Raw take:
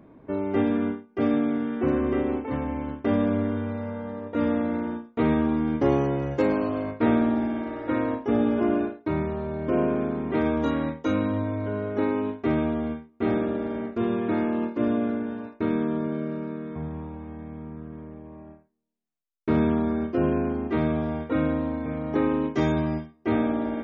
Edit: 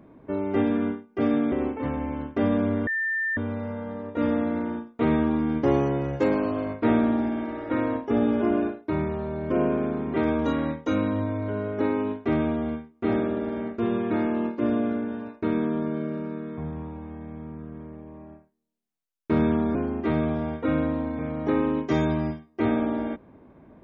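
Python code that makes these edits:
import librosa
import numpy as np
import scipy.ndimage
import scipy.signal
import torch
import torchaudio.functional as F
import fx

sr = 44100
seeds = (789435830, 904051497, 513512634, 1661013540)

y = fx.edit(x, sr, fx.cut(start_s=1.52, length_s=0.68),
    fx.insert_tone(at_s=3.55, length_s=0.5, hz=1790.0, db=-23.5),
    fx.cut(start_s=19.93, length_s=0.49), tone=tone)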